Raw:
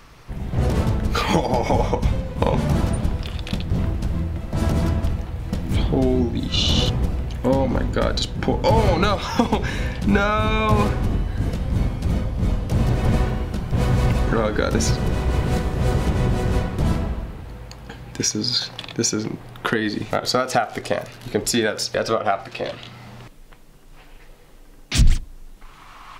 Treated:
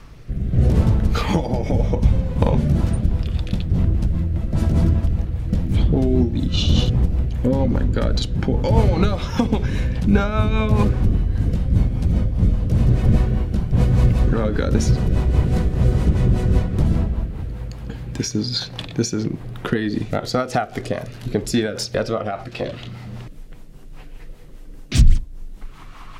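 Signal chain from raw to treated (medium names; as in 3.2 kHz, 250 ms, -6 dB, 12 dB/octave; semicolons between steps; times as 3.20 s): bass shelf 320 Hz +9 dB; in parallel at 0 dB: compression, threshold -23 dBFS, peak gain reduction 22 dB; on the sum: rotary cabinet horn 0.75 Hz, later 5 Hz, at 2.38 s; trim -4.5 dB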